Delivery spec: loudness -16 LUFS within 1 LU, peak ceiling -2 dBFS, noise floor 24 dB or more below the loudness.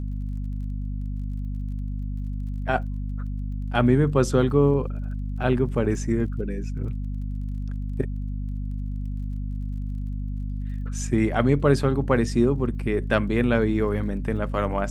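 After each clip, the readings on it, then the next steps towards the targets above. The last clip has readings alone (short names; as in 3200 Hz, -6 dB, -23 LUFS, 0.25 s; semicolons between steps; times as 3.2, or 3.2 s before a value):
ticks 31/s; hum 50 Hz; harmonics up to 250 Hz; hum level -26 dBFS; loudness -25.5 LUFS; peak -4.5 dBFS; loudness target -16.0 LUFS
-> de-click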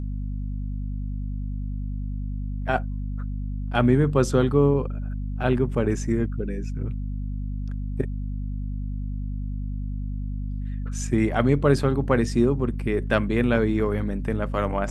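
ticks 0.067/s; hum 50 Hz; harmonics up to 250 Hz; hum level -26 dBFS
-> notches 50/100/150/200/250 Hz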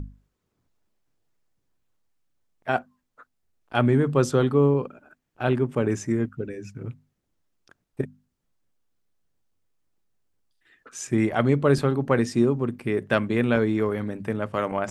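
hum none; loudness -24.0 LUFS; peak -5.0 dBFS; loudness target -16.0 LUFS
-> gain +8 dB; limiter -2 dBFS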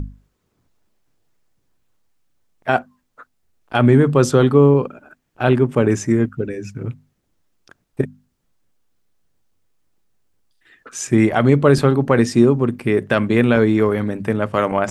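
loudness -16.5 LUFS; peak -2.0 dBFS; noise floor -69 dBFS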